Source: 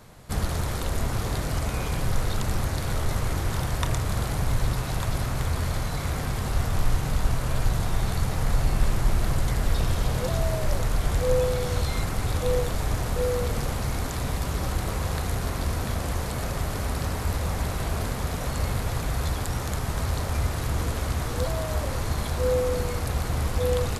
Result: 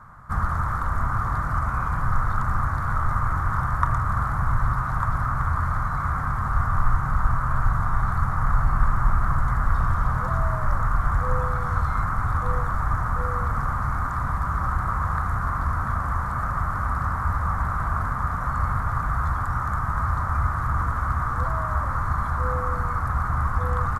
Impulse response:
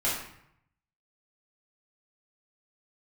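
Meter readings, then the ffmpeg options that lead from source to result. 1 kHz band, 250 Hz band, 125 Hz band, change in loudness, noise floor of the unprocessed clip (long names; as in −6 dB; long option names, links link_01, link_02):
+10.0 dB, −2.5 dB, +1.5 dB, +2.5 dB, −30 dBFS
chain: -af "firequalizer=gain_entry='entry(110,0);entry(420,-15);entry(1200,14);entry(2600,-20);entry(4100,-21);entry(5900,-18)':delay=0.05:min_phase=1,volume=2dB"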